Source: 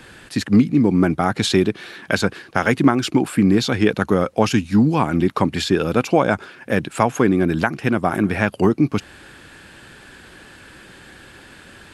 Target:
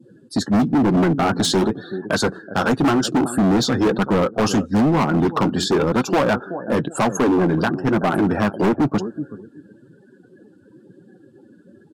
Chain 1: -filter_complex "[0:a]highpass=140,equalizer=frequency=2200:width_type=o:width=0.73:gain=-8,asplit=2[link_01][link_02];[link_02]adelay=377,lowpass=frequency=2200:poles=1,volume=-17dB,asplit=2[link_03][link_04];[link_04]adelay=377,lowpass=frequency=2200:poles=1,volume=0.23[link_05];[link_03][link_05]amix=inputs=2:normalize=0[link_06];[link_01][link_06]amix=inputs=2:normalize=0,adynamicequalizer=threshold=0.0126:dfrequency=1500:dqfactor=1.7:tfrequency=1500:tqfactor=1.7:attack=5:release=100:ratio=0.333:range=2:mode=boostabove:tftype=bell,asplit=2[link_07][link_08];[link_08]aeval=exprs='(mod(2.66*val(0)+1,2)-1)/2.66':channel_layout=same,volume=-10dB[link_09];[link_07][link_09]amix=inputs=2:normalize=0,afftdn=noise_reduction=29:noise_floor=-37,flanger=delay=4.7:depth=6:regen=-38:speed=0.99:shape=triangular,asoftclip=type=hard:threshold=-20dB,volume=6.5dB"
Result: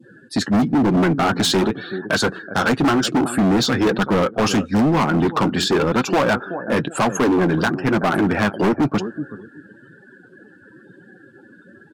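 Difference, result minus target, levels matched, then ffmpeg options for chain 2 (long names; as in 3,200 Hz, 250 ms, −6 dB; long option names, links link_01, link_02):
2,000 Hz band +3.0 dB
-filter_complex "[0:a]highpass=140,equalizer=frequency=2200:width_type=o:width=0.73:gain=-19.5,asplit=2[link_01][link_02];[link_02]adelay=377,lowpass=frequency=2200:poles=1,volume=-17dB,asplit=2[link_03][link_04];[link_04]adelay=377,lowpass=frequency=2200:poles=1,volume=0.23[link_05];[link_03][link_05]amix=inputs=2:normalize=0[link_06];[link_01][link_06]amix=inputs=2:normalize=0,adynamicequalizer=threshold=0.0126:dfrequency=1500:dqfactor=1.7:tfrequency=1500:tqfactor=1.7:attack=5:release=100:ratio=0.333:range=2:mode=boostabove:tftype=bell,asplit=2[link_07][link_08];[link_08]aeval=exprs='(mod(2.66*val(0)+1,2)-1)/2.66':channel_layout=same,volume=-10dB[link_09];[link_07][link_09]amix=inputs=2:normalize=0,afftdn=noise_reduction=29:noise_floor=-37,flanger=delay=4.7:depth=6:regen=-38:speed=0.99:shape=triangular,asoftclip=type=hard:threshold=-20dB,volume=6.5dB"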